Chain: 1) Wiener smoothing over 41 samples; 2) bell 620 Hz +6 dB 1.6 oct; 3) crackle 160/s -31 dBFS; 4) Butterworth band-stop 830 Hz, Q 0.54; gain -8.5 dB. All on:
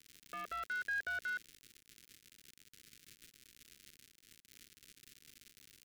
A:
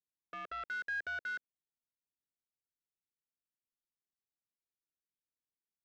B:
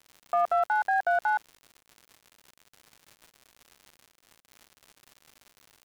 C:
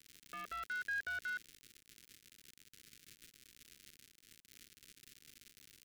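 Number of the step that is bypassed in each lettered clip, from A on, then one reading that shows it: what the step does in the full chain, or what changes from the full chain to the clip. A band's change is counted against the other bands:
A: 3, 4 kHz band -3.0 dB; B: 4, 500 Hz band +23.5 dB; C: 2, 500 Hz band -4.5 dB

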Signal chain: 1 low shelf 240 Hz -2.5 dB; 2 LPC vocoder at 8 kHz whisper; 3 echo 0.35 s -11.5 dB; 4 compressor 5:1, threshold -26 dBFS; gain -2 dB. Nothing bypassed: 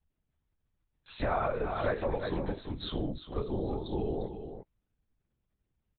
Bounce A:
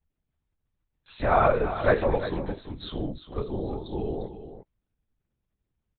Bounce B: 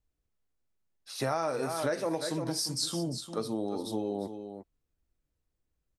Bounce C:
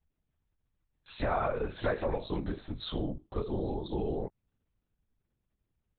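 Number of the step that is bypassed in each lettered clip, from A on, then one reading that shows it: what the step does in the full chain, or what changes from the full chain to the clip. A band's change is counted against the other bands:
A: 4, mean gain reduction 3.0 dB; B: 2, loudness change +1.5 LU; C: 3, momentary loudness spread change -3 LU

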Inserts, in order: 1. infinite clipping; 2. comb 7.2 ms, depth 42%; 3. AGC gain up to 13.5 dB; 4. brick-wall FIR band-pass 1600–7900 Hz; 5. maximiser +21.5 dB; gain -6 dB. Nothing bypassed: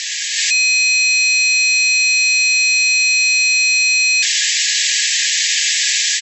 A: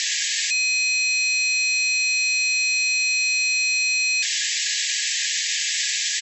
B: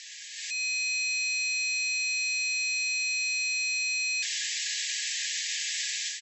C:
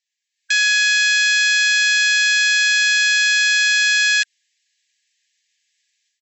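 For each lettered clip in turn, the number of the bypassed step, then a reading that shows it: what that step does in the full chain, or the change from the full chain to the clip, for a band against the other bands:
3, loudness change -7.5 LU; 5, crest factor change +4.0 dB; 1, distortion -2 dB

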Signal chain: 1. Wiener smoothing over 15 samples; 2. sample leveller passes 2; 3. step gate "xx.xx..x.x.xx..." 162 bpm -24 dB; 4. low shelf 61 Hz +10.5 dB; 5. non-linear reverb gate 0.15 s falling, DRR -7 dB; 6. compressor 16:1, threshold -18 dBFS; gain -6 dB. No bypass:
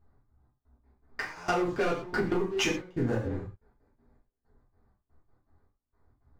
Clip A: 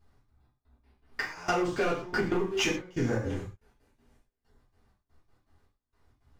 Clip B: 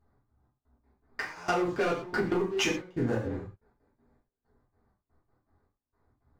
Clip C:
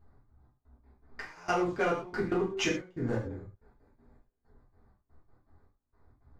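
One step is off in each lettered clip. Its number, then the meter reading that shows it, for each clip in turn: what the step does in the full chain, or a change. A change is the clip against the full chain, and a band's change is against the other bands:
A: 1, momentary loudness spread change -1 LU; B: 4, 125 Hz band -1.5 dB; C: 2, momentary loudness spread change +5 LU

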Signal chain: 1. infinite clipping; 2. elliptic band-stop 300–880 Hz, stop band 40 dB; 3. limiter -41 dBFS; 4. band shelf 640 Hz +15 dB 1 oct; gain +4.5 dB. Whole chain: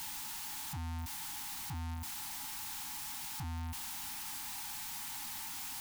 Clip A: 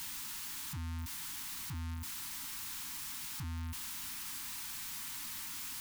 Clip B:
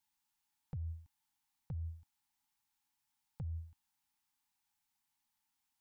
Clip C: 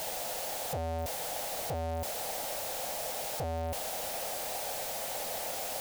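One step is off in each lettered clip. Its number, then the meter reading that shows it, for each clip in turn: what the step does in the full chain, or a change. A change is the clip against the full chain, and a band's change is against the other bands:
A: 4, 1 kHz band -5.5 dB; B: 1, crest factor change +6.0 dB; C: 2, 1 kHz band +5.5 dB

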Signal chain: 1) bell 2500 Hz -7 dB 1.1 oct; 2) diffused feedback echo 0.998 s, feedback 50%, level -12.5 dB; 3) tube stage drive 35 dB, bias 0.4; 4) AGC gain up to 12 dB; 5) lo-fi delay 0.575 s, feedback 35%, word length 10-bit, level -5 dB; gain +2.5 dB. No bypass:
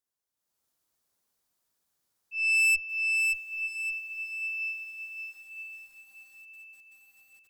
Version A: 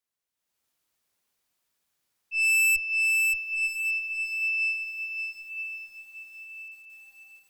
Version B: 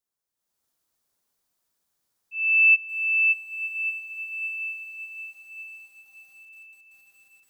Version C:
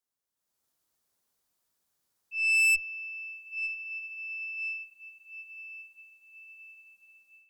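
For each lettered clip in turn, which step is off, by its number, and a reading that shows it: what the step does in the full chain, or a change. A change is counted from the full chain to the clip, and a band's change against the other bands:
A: 1, crest factor change -3.0 dB; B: 3, crest factor change +4.0 dB; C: 5, crest factor change +1.5 dB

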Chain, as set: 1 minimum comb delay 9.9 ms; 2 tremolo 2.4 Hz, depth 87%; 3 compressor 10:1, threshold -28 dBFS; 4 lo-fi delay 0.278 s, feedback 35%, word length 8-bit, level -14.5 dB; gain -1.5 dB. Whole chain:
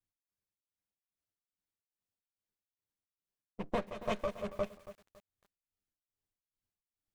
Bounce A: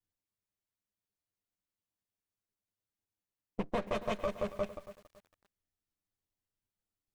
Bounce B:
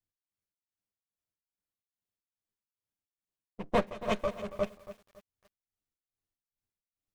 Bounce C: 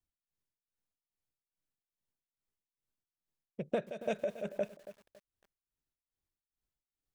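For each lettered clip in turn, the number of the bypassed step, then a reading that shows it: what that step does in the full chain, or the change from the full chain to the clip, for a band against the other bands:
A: 2, momentary loudness spread change -5 LU; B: 3, mean gain reduction 2.5 dB; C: 1, 1 kHz band -4.0 dB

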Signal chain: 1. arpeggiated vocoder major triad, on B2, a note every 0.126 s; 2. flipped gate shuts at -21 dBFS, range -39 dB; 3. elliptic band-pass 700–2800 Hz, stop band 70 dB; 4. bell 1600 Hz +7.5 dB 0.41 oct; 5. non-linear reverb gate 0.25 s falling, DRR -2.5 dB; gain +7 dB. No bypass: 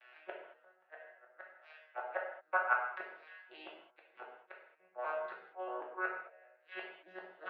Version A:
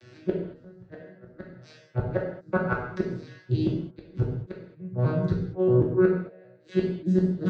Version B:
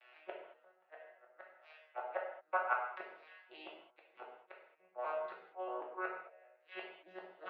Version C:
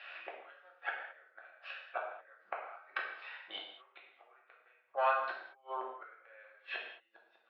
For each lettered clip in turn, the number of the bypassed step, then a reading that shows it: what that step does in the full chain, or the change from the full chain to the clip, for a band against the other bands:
3, 250 Hz band +27.5 dB; 4, 2 kHz band -5.5 dB; 1, 4 kHz band +12.0 dB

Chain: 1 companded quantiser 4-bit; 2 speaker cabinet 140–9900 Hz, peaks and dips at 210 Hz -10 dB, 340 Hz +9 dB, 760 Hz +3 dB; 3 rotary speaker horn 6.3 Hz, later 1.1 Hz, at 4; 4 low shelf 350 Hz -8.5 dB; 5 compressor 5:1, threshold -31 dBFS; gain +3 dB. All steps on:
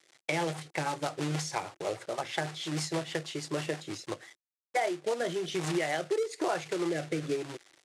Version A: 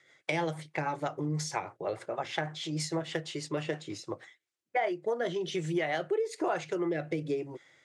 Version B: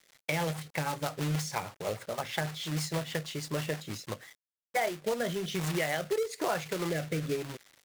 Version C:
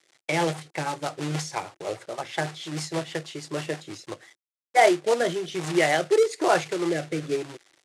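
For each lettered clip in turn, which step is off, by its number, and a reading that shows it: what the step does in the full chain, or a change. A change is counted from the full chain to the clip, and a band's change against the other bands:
1, distortion -14 dB; 2, 125 Hz band +4.0 dB; 5, mean gain reduction 3.5 dB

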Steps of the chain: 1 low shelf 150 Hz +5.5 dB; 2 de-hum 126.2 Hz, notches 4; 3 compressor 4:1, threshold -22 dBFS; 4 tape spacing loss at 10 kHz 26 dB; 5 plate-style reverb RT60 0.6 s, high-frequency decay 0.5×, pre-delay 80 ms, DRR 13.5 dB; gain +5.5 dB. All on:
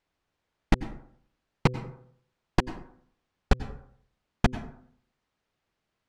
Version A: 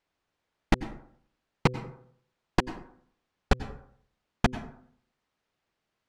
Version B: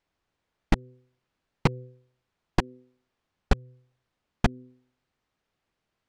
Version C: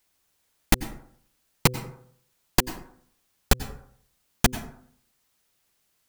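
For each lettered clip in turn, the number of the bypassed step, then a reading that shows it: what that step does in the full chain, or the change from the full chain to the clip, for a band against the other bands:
1, 125 Hz band -3.0 dB; 5, momentary loudness spread change -6 LU; 4, 8 kHz band +17.0 dB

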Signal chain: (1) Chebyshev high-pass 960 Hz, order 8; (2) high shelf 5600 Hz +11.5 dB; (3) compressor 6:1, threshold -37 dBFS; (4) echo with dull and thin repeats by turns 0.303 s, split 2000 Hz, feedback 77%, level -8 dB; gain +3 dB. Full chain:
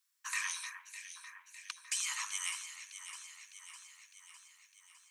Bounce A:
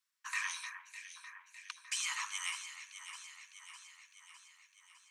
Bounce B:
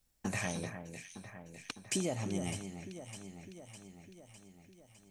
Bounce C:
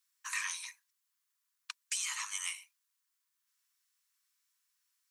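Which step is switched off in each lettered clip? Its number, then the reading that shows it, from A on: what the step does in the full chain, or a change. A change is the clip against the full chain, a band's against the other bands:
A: 2, 8 kHz band -4.5 dB; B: 1, 1 kHz band +5.5 dB; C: 4, echo-to-direct -6.5 dB to none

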